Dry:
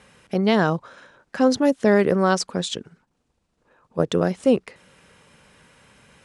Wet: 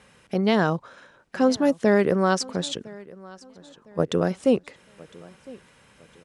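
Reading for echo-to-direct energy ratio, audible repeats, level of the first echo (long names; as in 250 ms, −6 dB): −21.5 dB, 2, −22.0 dB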